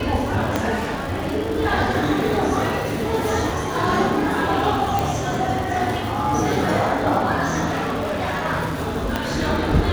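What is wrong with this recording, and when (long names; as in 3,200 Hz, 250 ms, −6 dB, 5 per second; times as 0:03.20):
surface crackle 220 per second −28 dBFS
0:00.56: click −7 dBFS
0:04.99: click
0:07.70–0:08.46: clipping −20.5 dBFS
0:09.16: click −8 dBFS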